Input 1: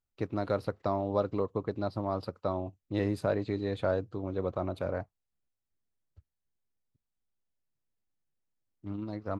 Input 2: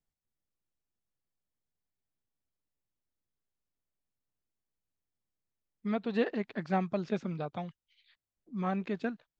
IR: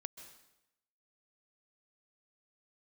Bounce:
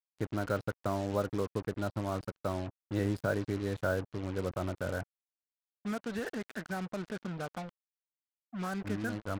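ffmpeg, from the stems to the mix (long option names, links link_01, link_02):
-filter_complex "[0:a]lowshelf=frequency=370:gain=7,volume=-6dB[link_01];[1:a]highshelf=frequency=3900:gain=-8.5,alimiter=level_in=1.5dB:limit=-24dB:level=0:latency=1:release=55,volume=-1.5dB,volume=-2.5dB[link_02];[link_01][link_02]amix=inputs=2:normalize=0,equalizer=frequency=1500:width_type=o:width=0.36:gain=12.5,acrusher=bits=6:mix=0:aa=0.5"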